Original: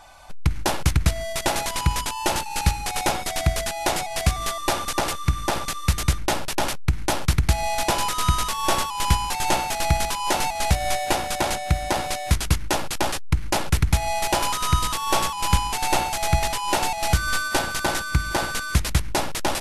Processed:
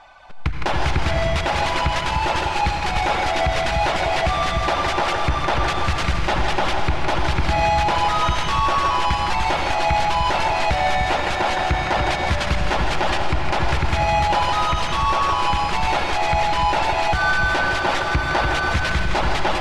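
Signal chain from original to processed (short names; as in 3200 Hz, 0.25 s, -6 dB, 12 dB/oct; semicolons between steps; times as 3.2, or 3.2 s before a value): low shelf 390 Hz -8.5 dB; split-band echo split 360 Hz, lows 0.296 s, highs 0.162 s, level -8 dB; AGC; in parallel at -6.5 dB: soft clip -16 dBFS, distortion -10 dB; on the sum: reverb removal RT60 0.79 s; on a send at -5 dB: reverb RT60 3.3 s, pre-delay 67 ms; on the sum: limiter -9 dBFS, peak gain reduction 8.5 dB; LPF 3000 Hz 12 dB/oct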